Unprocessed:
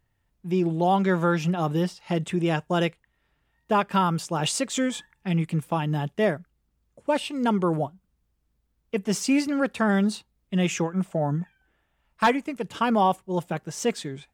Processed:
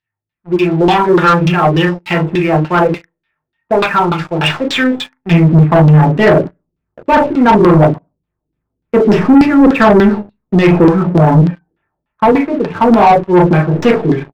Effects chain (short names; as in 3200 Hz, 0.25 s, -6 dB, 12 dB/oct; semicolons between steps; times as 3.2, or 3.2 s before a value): tracing distortion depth 0.19 ms; tilt shelf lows -6 dB, about 1500 Hz, from 5.3 s lows +5 dB; early reflections 39 ms -4 dB, 74 ms -17 dB; reverb RT60 0.30 s, pre-delay 3 ms, DRR 5.5 dB; AGC gain up to 8.5 dB; LFO low-pass saw down 3.4 Hz 290–4500 Hz; sample leveller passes 3; high shelf 3000 Hz -9.5 dB; gain -1.5 dB